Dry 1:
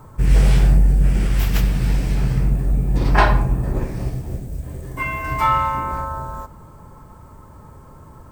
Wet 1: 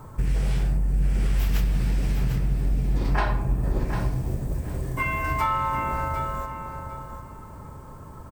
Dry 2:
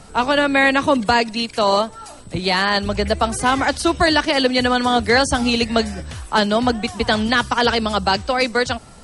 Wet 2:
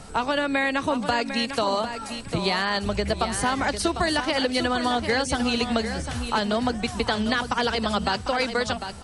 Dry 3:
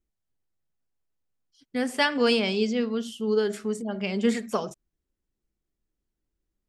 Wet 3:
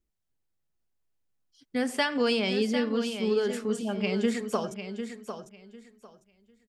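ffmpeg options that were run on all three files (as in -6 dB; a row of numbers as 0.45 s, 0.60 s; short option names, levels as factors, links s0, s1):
-af "acompressor=threshold=0.0794:ratio=4,aecho=1:1:750|1500|2250:0.355|0.0745|0.0156"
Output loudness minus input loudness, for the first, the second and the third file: -7.0 LU, -7.0 LU, -2.5 LU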